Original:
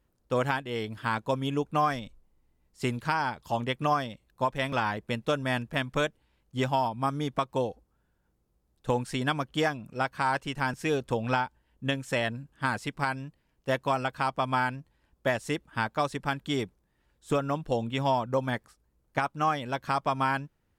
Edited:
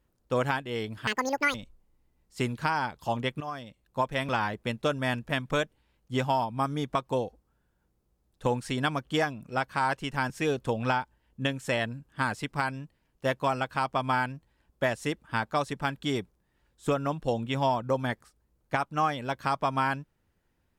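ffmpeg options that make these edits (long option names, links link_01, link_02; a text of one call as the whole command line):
ffmpeg -i in.wav -filter_complex "[0:a]asplit=4[link_01][link_02][link_03][link_04];[link_01]atrim=end=1.074[link_05];[link_02]atrim=start=1.07:end=1.98,asetpts=PTS-STARTPTS,asetrate=84672,aresample=44100[link_06];[link_03]atrim=start=1.976:end=3.84,asetpts=PTS-STARTPTS,afade=type=out:start_time=1.86:duration=0.004:curve=hsin:silence=0.177828[link_07];[link_04]atrim=start=3.84,asetpts=PTS-STARTPTS,afade=type=in:duration=0.63:silence=0.177828[link_08];[link_05][link_06]acrossfade=duration=0.004:curve1=hsin:curve2=hsin[link_09];[link_07][link_08]concat=n=2:v=0:a=1[link_10];[link_09][link_10]acrossfade=duration=0.004:curve1=hsin:curve2=hsin" out.wav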